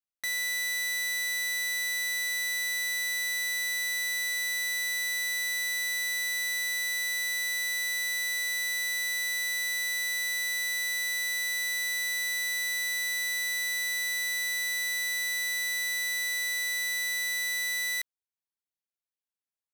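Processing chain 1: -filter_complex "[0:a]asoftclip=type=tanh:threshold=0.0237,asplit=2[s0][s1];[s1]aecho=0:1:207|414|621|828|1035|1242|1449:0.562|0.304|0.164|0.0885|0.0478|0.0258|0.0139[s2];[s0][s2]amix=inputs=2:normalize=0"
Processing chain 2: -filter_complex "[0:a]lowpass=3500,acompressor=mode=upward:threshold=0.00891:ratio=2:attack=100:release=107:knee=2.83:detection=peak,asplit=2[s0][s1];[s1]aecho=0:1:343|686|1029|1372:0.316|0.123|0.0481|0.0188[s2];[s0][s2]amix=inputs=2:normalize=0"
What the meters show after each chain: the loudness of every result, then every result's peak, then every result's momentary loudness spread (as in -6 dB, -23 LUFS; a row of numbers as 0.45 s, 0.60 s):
-31.5 LUFS, -29.0 LUFS; -27.5 dBFS, -9.0 dBFS; 0 LU, 0 LU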